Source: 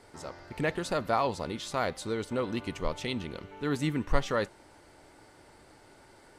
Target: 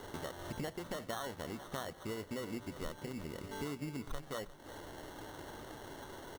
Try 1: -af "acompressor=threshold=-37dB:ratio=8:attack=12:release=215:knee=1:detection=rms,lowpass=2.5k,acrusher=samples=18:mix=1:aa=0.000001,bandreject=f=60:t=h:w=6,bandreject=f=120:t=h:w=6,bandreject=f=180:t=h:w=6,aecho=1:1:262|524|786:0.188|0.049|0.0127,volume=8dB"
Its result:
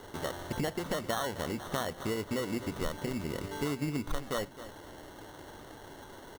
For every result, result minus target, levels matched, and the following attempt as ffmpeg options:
compressor: peak gain reduction -8 dB; echo 91 ms early
-af "acompressor=threshold=-46dB:ratio=8:attack=12:release=215:knee=1:detection=rms,lowpass=2.5k,acrusher=samples=18:mix=1:aa=0.000001,bandreject=f=60:t=h:w=6,bandreject=f=120:t=h:w=6,bandreject=f=180:t=h:w=6,aecho=1:1:262|524|786:0.188|0.049|0.0127,volume=8dB"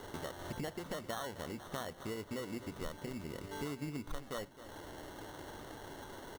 echo 91 ms early
-af "acompressor=threshold=-46dB:ratio=8:attack=12:release=215:knee=1:detection=rms,lowpass=2.5k,acrusher=samples=18:mix=1:aa=0.000001,bandreject=f=60:t=h:w=6,bandreject=f=120:t=h:w=6,bandreject=f=180:t=h:w=6,aecho=1:1:353|706|1059:0.188|0.049|0.0127,volume=8dB"

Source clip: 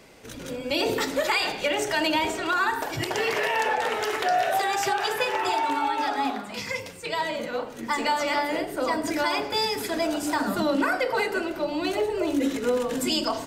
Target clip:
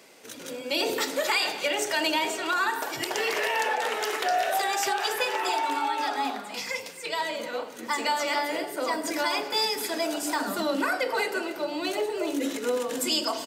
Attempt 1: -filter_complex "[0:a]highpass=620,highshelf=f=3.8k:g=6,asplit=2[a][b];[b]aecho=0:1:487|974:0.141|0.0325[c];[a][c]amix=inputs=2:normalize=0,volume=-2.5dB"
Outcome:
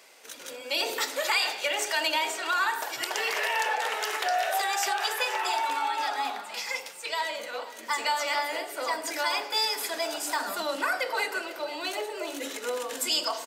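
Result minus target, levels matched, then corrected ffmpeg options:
echo 0.22 s late; 250 Hz band -9.5 dB
-filter_complex "[0:a]highpass=260,highshelf=f=3.8k:g=6,asplit=2[a][b];[b]aecho=0:1:267|534:0.141|0.0325[c];[a][c]amix=inputs=2:normalize=0,volume=-2.5dB"

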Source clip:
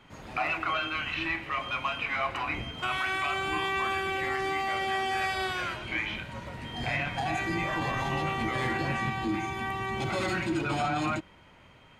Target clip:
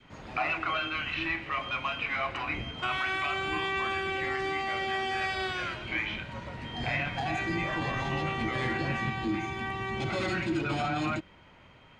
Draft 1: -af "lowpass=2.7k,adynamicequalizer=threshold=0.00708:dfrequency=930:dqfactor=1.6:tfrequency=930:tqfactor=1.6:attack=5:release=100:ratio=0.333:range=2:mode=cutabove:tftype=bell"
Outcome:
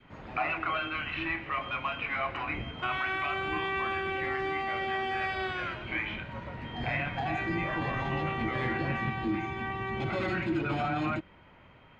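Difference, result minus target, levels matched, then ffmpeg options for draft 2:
8000 Hz band -12.0 dB
-af "lowpass=6k,adynamicequalizer=threshold=0.00708:dfrequency=930:dqfactor=1.6:tfrequency=930:tqfactor=1.6:attack=5:release=100:ratio=0.333:range=2:mode=cutabove:tftype=bell"

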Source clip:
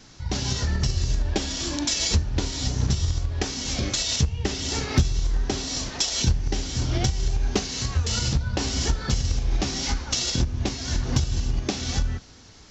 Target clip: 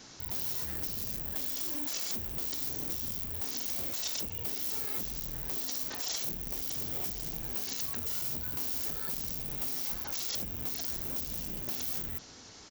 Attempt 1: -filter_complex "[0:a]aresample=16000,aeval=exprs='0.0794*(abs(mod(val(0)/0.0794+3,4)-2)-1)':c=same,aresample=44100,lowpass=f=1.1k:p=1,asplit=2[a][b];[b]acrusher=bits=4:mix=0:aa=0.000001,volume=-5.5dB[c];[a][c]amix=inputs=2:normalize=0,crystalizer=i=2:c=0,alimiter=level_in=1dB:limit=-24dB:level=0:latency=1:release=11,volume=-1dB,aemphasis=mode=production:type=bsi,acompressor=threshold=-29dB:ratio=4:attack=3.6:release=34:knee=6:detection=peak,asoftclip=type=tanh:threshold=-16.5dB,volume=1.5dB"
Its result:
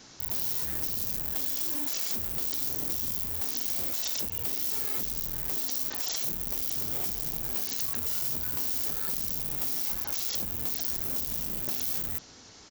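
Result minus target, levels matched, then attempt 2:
soft clip: distortion -12 dB
-filter_complex "[0:a]aresample=16000,aeval=exprs='0.0794*(abs(mod(val(0)/0.0794+3,4)-2)-1)':c=same,aresample=44100,lowpass=f=1.1k:p=1,asplit=2[a][b];[b]acrusher=bits=4:mix=0:aa=0.000001,volume=-5.5dB[c];[a][c]amix=inputs=2:normalize=0,crystalizer=i=2:c=0,alimiter=level_in=1dB:limit=-24dB:level=0:latency=1:release=11,volume=-1dB,aemphasis=mode=production:type=bsi,acompressor=threshold=-29dB:ratio=4:attack=3.6:release=34:knee=6:detection=peak,asoftclip=type=tanh:threshold=-28dB,volume=1.5dB"

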